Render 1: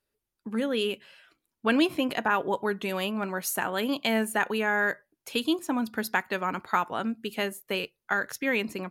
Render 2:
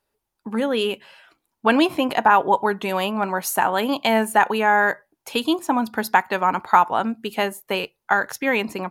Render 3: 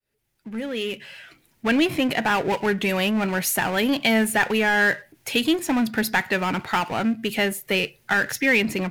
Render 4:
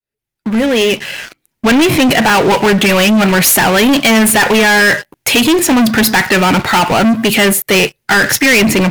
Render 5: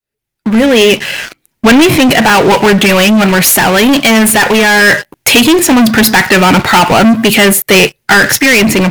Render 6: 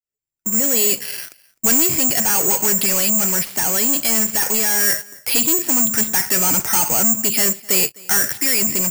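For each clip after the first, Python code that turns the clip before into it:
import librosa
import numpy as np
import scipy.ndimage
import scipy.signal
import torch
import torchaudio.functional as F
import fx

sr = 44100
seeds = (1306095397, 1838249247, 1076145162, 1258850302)

y1 = fx.peak_eq(x, sr, hz=860.0, db=10.0, octaves=0.78)
y1 = y1 * 10.0 ** (4.5 / 20.0)
y2 = fx.fade_in_head(y1, sr, length_s=2.38)
y2 = fx.power_curve(y2, sr, exponent=0.7)
y2 = fx.graphic_eq(y2, sr, hz=(125, 1000, 2000), db=(8, -11, 7))
y2 = y2 * 10.0 ** (-4.5 / 20.0)
y3 = fx.leveller(y2, sr, passes=5)
y3 = y3 * 10.0 ** (1.5 / 20.0)
y4 = fx.rider(y3, sr, range_db=10, speed_s=0.5)
y4 = y4 * 10.0 ** (3.5 / 20.0)
y5 = y4 + 10.0 ** (-24.0 / 20.0) * np.pad(y4, (int(256 * sr / 1000.0), 0))[:len(y4)]
y5 = (np.kron(scipy.signal.resample_poly(y5, 1, 6), np.eye(6)[0]) * 6)[:len(y5)]
y5 = y5 * 10.0 ** (-18.0 / 20.0)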